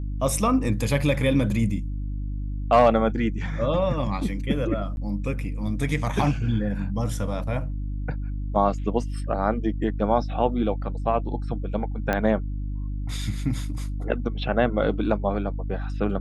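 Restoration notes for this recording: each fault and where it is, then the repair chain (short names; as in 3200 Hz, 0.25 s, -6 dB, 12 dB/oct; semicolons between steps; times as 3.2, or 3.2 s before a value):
hum 50 Hz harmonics 6 -29 dBFS
4.96–4.97 gap 11 ms
12.13 pop -11 dBFS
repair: de-click; de-hum 50 Hz, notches 6; interpolate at 4.96, 11 ms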